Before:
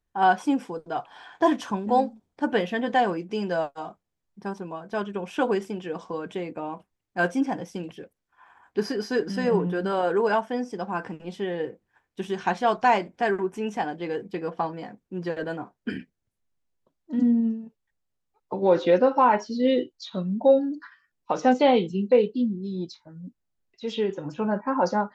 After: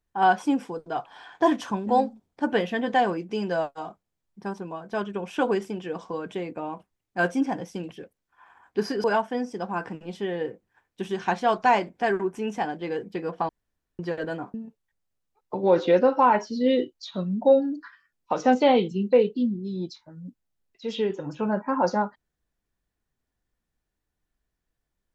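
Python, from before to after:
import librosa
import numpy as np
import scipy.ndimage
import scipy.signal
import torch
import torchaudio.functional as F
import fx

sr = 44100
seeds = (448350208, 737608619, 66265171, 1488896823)

y = fx.edit(x, sr, fx.cut(start_s=9.04, length_s=1.19),
    fx.room_tone_fill(start_s=14.68, length_s=0.5),
    fx.cut(start_s=15.73, length_s=1.8), tone=tone)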